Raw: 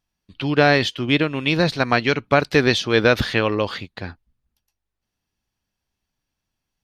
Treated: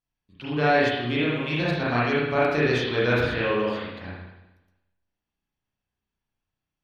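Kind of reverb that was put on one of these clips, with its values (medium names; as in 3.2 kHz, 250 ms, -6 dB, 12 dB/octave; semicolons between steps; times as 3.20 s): spring tank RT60 1 s, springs 33/59 ms, chirp 50 ms, DRR -8 dB; trim -13.5 dB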